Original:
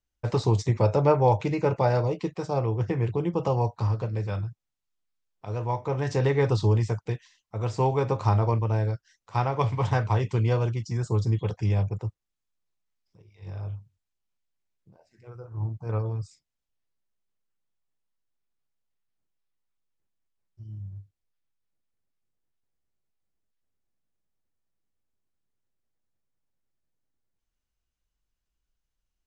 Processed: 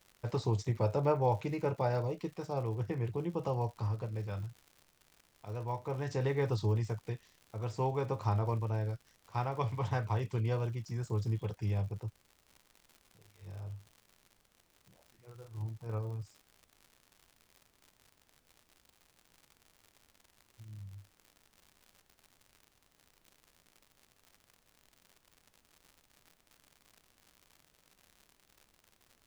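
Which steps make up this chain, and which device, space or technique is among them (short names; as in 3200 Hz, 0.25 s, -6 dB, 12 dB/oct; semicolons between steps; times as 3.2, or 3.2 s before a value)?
vinyl LP (crackle 120/s -37 dBFS; pink noise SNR 35 dB); gain -9 dB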